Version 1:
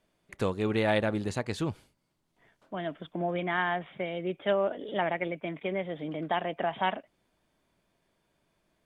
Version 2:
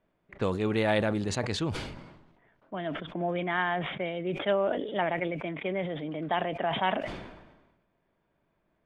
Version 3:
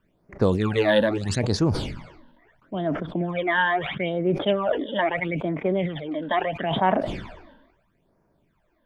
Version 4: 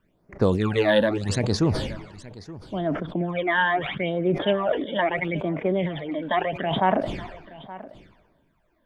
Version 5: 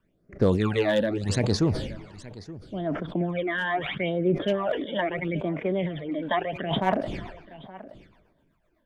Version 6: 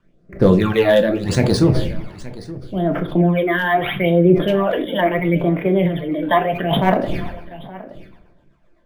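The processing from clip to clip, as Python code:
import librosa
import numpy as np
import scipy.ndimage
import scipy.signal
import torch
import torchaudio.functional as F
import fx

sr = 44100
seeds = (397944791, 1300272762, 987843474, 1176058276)

y1 = fx.env_lowpass(x, sr, base_hz=2000.0, full_db=-24.0)
y1 = fx.sustainer(y1, sr, db_per_s=50.0)
y2 = fx.phaser_stages(y1, sr, stages=12, low_hz=120.0, high_hz=3300.0, hz=0.76, feedback_pct=35)
y2 = y2 * 10.0 ** (8.0 / 20.0)
y3 = y2 + 10.0 ** (-18.0 / 20.0) * np.pad(y2, (int(873 * sr / 1000.0), 0))[:len(y2)]
y4 = np.clip(10.0 ** (12.0 / 20.0) * y3, -1.0, 1.0) / 10.0 ** (12.0 / 20.0)
y4 = fx.rotary_switch(y4, sr, hz=1.2, then_hz=8.0, switch_at_s=6.05)
y5 = fx.room_shoebox(y4, sr, seeds[0], volume_m3=170.0, walls='furnished', distance_m=0.84)
y5 = np.interp(np.arange(len(y5)), np.arange(len(y5))[::3], y5[::3])
y5 = y5 * 10.0 ** (7.5 / 20.0)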